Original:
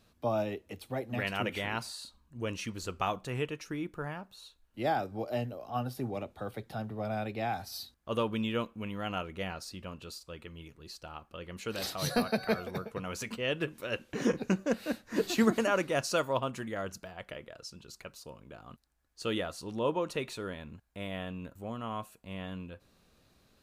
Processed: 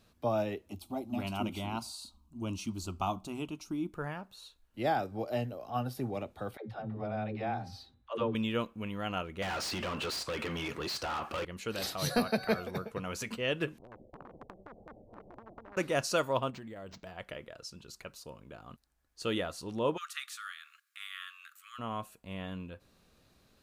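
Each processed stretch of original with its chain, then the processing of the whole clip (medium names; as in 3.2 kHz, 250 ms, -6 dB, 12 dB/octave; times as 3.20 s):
0.69–3.93 s: peaking EQ 110 Hz +13 dB 1.5 oct + static phaser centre 480 Hz, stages 6
6.57–8.35 s: tape spacing loss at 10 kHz 20 dB + de-hum 265.1 Hz, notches 15 + phase dispersion lows, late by 123 ms, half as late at 310 Hz
9.42–11.45 s: overdrive pedal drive 34 dB, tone 2.9 kHz, clips at -23 dBFS + high-pass 40 Hz + compression 4:1, threshold -33 dBFS
13.78–15.77 s: steep low-pass 590 Hz 48 dB/octave + compression 12:1, threshold -34 dBFS + spectrum-flattening compressor 10:1
16.50–17.07 s: peaking EQ 1.4 kHz -6.5 dB 0.88 oct + compression 10:1, threshold -41 dBFS + decimation joined by straight lines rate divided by 4×
19.96–21.78 s: spectral peaks clipped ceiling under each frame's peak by 14 dB + dynamic bell 2.5 kHz, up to -6 dB, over -51 dBFS, Q 1.9 + brick-wall FIR high-pass 1.1 kHz
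whole clip: none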